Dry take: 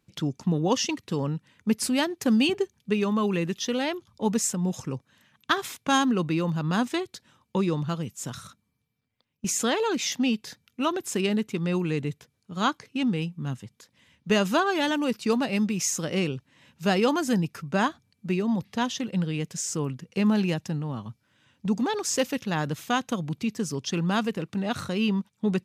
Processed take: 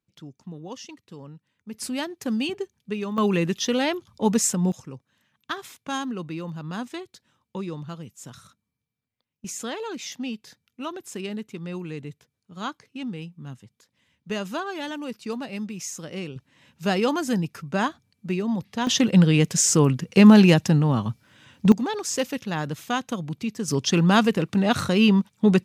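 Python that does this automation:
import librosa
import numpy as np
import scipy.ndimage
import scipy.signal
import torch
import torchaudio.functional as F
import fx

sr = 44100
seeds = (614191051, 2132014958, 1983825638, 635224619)

y = fx.gain(x, sr, db=fx.steps((0.0, -14.0), (1.74, -4.5), (3.18, 4.0), (4.72, -7.0), (16.36, 0.0), (18.87, 11.0), (21.72, -0.5), (23.68, 7.5)))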